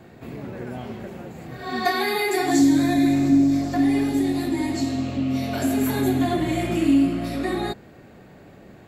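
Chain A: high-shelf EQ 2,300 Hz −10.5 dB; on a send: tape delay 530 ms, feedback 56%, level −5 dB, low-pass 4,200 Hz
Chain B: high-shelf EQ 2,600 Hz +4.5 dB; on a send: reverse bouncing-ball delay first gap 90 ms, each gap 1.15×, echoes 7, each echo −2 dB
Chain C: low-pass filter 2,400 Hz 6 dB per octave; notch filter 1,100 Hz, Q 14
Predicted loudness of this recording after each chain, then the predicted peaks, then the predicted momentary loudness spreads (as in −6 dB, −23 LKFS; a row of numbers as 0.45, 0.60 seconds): −21.5, −16.5, −22.0 LKFS; −6.5, −1.0, −7.5 dBFS; 17, 20, 18 LU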